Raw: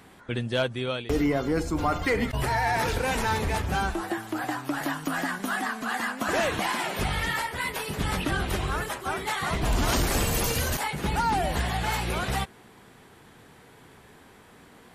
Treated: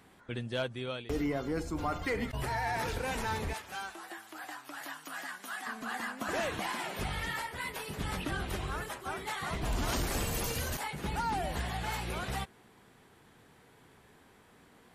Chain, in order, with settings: 3.53–5.67 HPF 1300 Hz 6 dB/oct; gain -8 dB

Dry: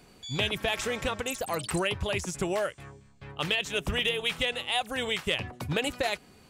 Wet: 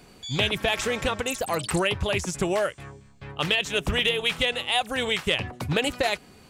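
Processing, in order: Doppler distortion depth 0.15 ms; gain +4.5 dB

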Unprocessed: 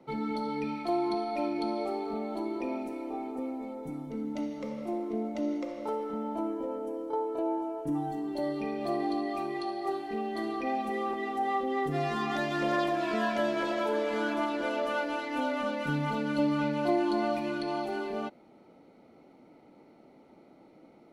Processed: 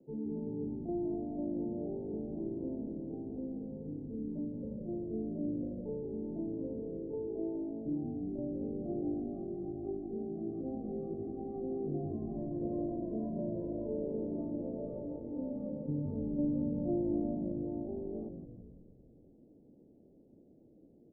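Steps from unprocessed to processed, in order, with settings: inverse Chebyshev low-pass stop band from 1300 Hz, stop band 50 dB; on a send: frequency-shifting echo 0.166 s, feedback 62%, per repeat -53 Hz, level -7 dB; on the sum: gain -4.5 dB

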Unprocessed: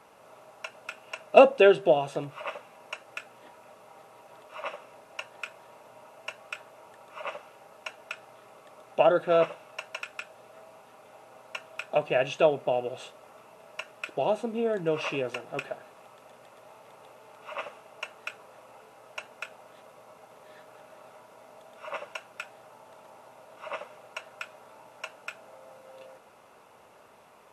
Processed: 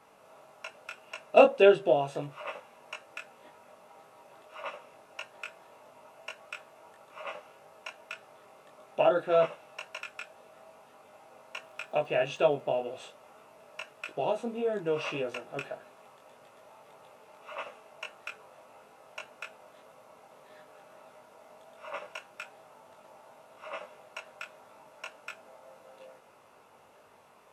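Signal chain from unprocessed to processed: chorus 1.7 Hz, delay 19.5 ms, depth 2.1 ms; 11.62–12.6 crackle 57/s -52 dBFS

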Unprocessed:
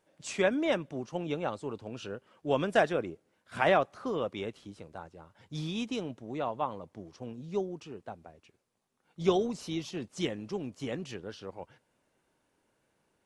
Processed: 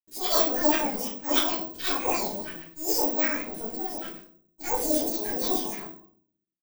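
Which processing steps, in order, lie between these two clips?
spectral dilation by 0.12 s; expander -50 dBFS; bell 650 Hz -9.5 dB 0.4 oct; notch 1400 Hz, Q 5.9; auto swell 0.306 s; flange 0.27 Hz, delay 5.4 ms, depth 1.8 ms, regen +47%; crossover distortion -55.5 dBFS; phaser stages 2, 3.2 Hz, lowest notch 270–1300 Hz; shoebox room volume 250 m³, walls mixed, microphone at 3.7 m; speed mistake 7.5 ips tape played at 15 ips; careless resampling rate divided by 2×, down none, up zero stuff; record warp 45 rpm, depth 100 cents

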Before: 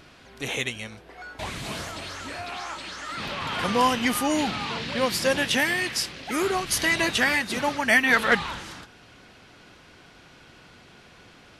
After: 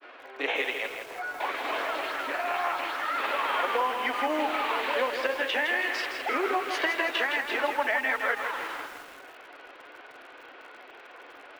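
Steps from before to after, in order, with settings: elliptic high-pass 260 Hz, stop band 40 dB; three-band isolator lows -24 dB, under 360 Hz, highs -22 dB, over 3000 Hz; compressor 10:1, threshold -32 dBFS, peak gain reduction 16 dB; grains 0.1 s, grains 20/s, spray 17 ms, pitch spread up and down by 0 st; short-mantissa float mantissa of 4-bit; air absorption 66 m; lo-fi delay 0.163 s, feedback 55%, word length 9-bit, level -6 dB; gain +9 dB

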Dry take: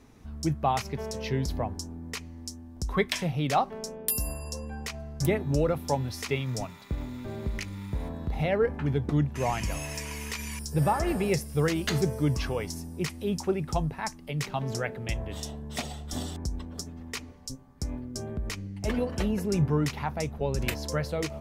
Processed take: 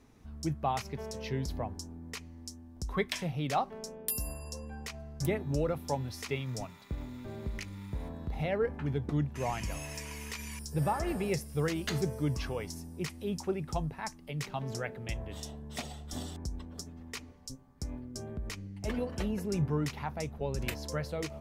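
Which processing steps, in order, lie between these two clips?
gain -5.5 dB

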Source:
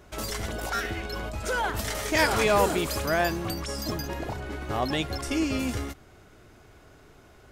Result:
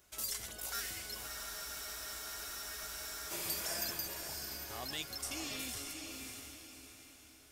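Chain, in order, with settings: pre-emphasis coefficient 0.9; diffused feedback echo 0.598 s, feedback 41%, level -4 dB; spectral freeze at 1.3, 2.00 s; gain -1.5 dB

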